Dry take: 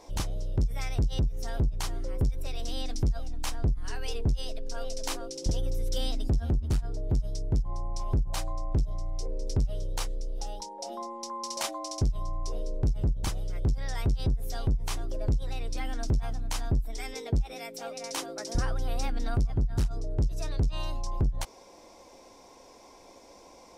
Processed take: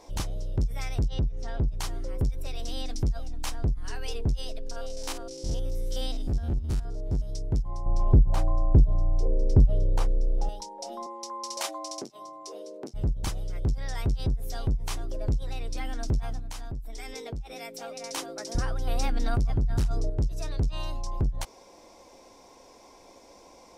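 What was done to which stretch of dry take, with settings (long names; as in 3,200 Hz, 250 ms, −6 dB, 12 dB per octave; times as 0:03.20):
0:01.08–0:01.68: high-frequency loss of the air 110 metres
0:04.71–0:07.30: spectrum averaged block by block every 50 ms
0:07.86–0:10.49: tilt shelving filter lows +9 dB, about 1,500 Hz
0:11.06–0:12.94: high-pass filter 280 Hz 24 dB per octave
0:16.39–0:18.00: downward compressor, threshold −33 dBFS
0:18.87–0:20.10: envelope flattener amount 70%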